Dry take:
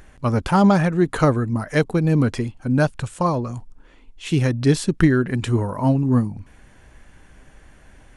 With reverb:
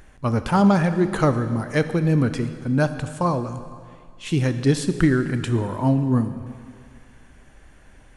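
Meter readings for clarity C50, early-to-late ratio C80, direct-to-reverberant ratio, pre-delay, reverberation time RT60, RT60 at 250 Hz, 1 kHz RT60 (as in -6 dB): 11.0 dB, 11.5 dB, 10.0 dB, 19 ms, 2.2 s, 2.1 s, 2.3 s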